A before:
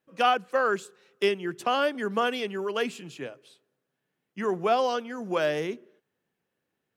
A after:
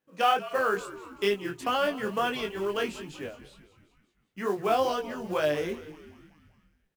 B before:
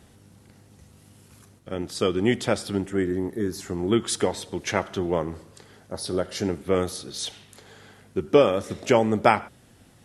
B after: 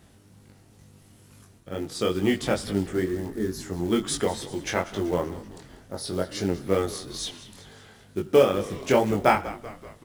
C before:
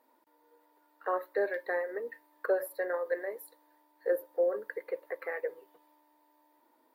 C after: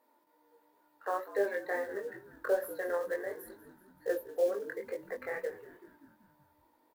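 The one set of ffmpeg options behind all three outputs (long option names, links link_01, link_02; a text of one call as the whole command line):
ffmpeg -i in.wav -filter_complex "[0:a]asplit=7[link_01][link_02][link_03][link_04][link_05][link_06][link_07];[link_02]adelay=191,afreqshift=-68,volume=-16dB[link_08];[link_03]adelay=382,afreqshift=-136,volume=-20.7dB[link_09];[link_04]adelay=573,afreqshift=-204,volume=-25.5dB[link_10];[link_05]adelay=764,afreqshift=-272,volume=-30.2dB[link_11];[link_06]adelay=955,afreqshift=-340,volume=-34.9dB[link_12];[link_07]adelay=1146,afreqshift=-408,volume=-39.7dB[link_13];[link_01][link_08][link_09][link_10][link_11][link_12][link_13]amix=inputs=7:normalize=0,acrusher=bits=6:mode=log:mix=0:aa=0.000001,flanger=delay=19.5:depth=3.6:speed=2.2,volume=1.5dB" out.wav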